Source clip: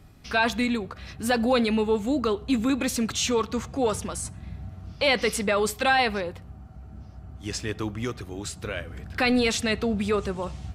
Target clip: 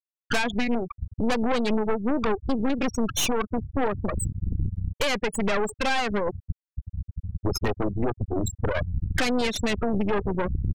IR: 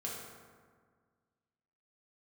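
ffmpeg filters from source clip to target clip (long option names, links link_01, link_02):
-af "afftfilt=real='re*gte(hypot(re,im),0.1)':imag='im*gte(hypot(re,im),0.1)':win_size=1024:overlap=0.75,acompressor=threshold=-35dB:ratio=16,tremolo=f=5.2:d=0.3,acontrast=30,aeval=exprs='0.0708*(cos(1*acos(clip(val(0)/0.0708,-1,1)))-cos(1*PI/2))+0.0282*(cos(4*acos(clip(val(0)/0.0708,-1,1)))-cos(4*PI/2))+0.0178*(cos(5*acos(clip(val(0)/0.0708,-1,1)))-cos(5*PI/2))+0.00562*(cos(8*acos(clip(val(0)/0.0708,-1,1)))-cos(8*PI/2))':channel_layout=same,volume=4.5dB"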